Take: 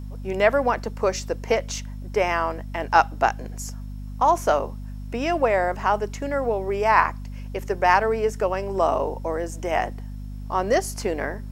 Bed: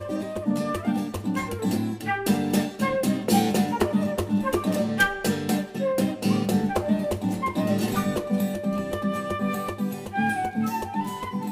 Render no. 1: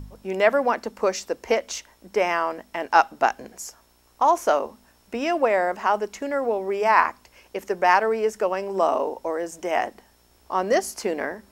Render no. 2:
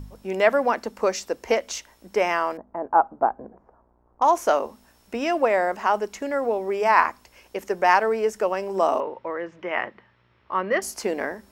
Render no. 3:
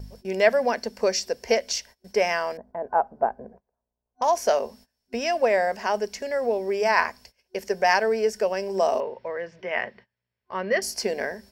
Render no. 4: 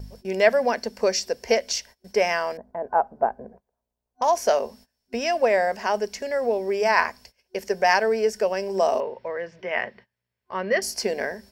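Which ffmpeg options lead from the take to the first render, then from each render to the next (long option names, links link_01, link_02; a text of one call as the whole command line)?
ffmpeg -i in.wav -af "bandreject=frequency=50:width_type=h:width=4,bandreject=frequency=100:width_type=h:width=4,bandreject=frequency=150:width_type=h:width=4,bandreject=frequency=200:width_type=h:width=4,bandreject=frequency=250:width_type=h:width=4" out.wav
ffmpeg -i in.wav -filter_complex "[0:a]asettb=1/sr,asplit=3[link_01][link_02][link_03];[link_01]atrim=end=2.574[link_04];[link_02]atrim=start=2.57:end=4.22,asetpts=PTS-STARTPTS,afade=type=in:duration=0.004:curve=qsin,afade=type=out:start_time=1.646:duration=0.004:curve=qsin,lowpass=frequency=1100:width=0.5412,lowpass=frequency=1100:width=1.3066[link_05];[link_03]atrim=start=4.216[link_06];[link_04][link_05]acrossfade=duration=0.004:curve1=hsin:curve2=qsin[link_07];[link_07][link_06]acrossfade=duration=0.004:curve1=qsin:curve2=hsin,asettb=1/sr,asplit=3[link_08][link_09][link_10];[link_08]atrim=end=9.004[link_11];[link_09]atrim=start=9:end=10.82,asetpts=PTS-STARTPTS,afade=type=in:duration=0.004:curve=qsin,afade=type=out:start_time=1.816:duration=0.004:curve=qsin,highpass=100,equalizer=frequency=120:width_type=q:width=4:gain=9,equalizer=frequency=270:width_type=q:width=4:gain=-8,equalizer=frequency=430:width_type=q:width=4:gain=-4,equalizer=frequency=730:width_type=q:width=4:gain=-10,equalizer=frequency=1200:width_type=q:width=4:gain=4,equalizer=frequency=2000:width_type=q:width=4:gain=4,lowpass=frequency=3200:width=0.5412,lowpass=frequency=3200:width=1.3066[link_12];[link_10]atrim=start=10.816[link_13];[link_11][link_12]acrossfade=duration=0.004:curve1=hsin:curve2=qsin[link_14];[link_14][link_13]acrossfade=duration=0.004:curve1=qsin:curve2=hsin" out.wav
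ffmpeg -i in.wav -af "agate=range=-23dB:threshold=-47dB:ratio=16:detection=peak,superequalizer=6b=0.282:9b=0.562:10b=0.355:14b=2.51" out.wav
ffmpeg -i in.wav -af "volume=1dB" out.wav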